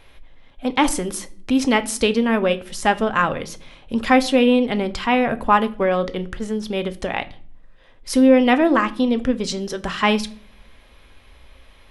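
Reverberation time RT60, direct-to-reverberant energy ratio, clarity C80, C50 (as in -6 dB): not exponential, 10.0 dB, 23.0 dB, 19.0 dB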